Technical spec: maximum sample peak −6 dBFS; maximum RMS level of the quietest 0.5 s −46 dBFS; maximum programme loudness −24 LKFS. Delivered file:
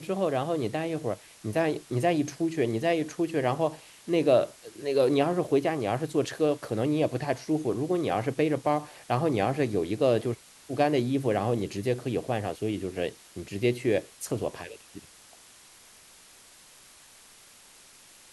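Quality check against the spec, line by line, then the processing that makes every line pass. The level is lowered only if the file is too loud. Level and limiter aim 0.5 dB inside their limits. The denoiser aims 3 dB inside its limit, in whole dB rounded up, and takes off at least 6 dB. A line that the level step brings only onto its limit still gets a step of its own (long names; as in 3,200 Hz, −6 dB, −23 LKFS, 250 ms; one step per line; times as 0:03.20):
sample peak −10.0 dBFS: in spec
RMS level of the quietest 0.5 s −54 dBFS: in spec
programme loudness −28.0 LKFS: in spec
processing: no processing needed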